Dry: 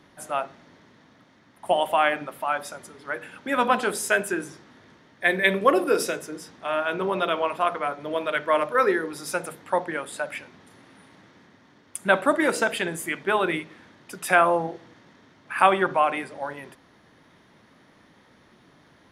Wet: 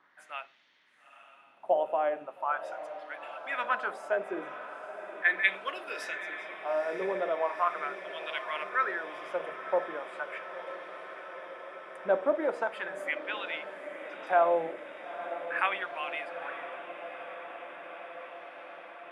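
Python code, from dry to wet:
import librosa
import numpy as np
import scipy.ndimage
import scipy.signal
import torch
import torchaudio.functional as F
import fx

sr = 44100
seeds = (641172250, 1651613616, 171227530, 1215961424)

y = fx.wah_lfo(x, sr, hz=0.39, low_hz=510.0, high_hz=2900.0, q=2.1)
y = fx.ellip_bandpass(y, sr, low_hz=120.0, high_hz=5800.0, order=3, stop_db=40, at=(13.24, 14.27))
y = fx.echo_diffused(y, sr, ms=907, feedback_pct=77, wet_db=-12)
y = F.gain(torch.from_numpy(y), -2.0).numpy()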